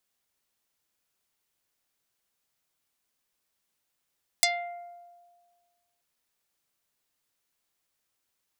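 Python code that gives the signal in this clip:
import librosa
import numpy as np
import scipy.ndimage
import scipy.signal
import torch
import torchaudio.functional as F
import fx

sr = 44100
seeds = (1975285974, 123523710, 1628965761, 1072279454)

y = fx.pluck(sr, length_s=1.58, note=77, decay_s=1.65, pick=0.48, brightness='dark')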